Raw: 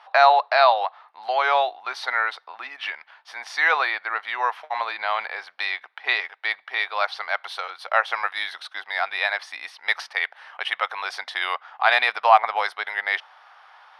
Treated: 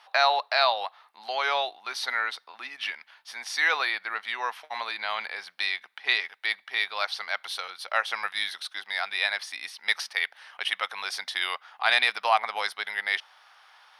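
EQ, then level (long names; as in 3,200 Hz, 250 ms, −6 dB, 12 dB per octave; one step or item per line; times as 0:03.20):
drawn EQ curve 190 Hz 0 dB, 280 Hz −8 dB, 700 Hz −17 dB, 1,200 Hz −15 dB, 10,000 Hz +1 dB
+8.0 dB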